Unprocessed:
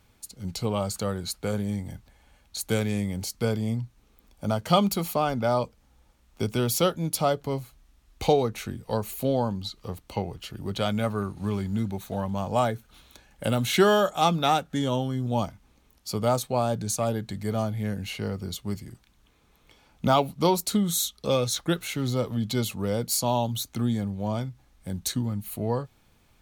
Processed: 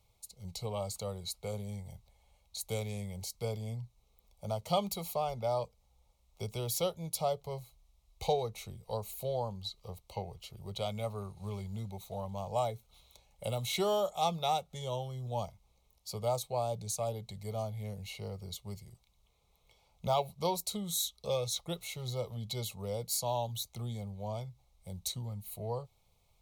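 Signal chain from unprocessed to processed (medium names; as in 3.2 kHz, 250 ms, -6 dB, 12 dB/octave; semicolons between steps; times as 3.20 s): static phaser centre 670 Hz, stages 4; small resonant body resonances 2.2/3.9 kHz, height 8 dB, ringing for 20 ms; trim -7 dB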